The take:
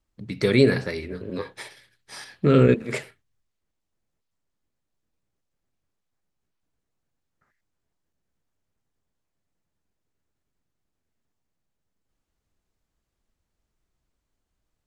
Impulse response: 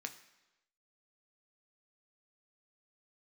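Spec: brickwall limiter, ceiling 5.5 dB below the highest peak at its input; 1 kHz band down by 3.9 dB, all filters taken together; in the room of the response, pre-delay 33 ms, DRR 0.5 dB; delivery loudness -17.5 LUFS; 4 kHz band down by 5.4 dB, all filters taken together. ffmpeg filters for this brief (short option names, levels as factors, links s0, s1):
-filter_complex "[0:a]equalizer=f=1000:t=o:g=-5.5,equalizer=f=4000:t=o:g=-6,alimiter=limit=0.282:level=0:latency=1,asplit=2[s0][s1];[1:a]atrim=start_sample=2205,adelay=33[s2];[s1][s2]afir=irnorm=-1:irlink=0,volume=1.12[s3];[s0][s3]amix=inputs=2:normalize=0,volume=1.88"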